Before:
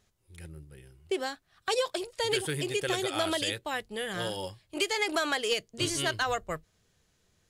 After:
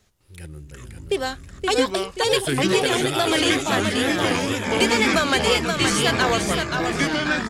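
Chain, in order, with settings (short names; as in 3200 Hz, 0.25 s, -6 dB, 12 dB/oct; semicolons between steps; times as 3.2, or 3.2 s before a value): feedback echo 0.526 s, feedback 38%, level -5 dB; echoes that change speed 0.204 s, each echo -6 st, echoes 2; wow and flutter 73 cents; gain +7.5 dB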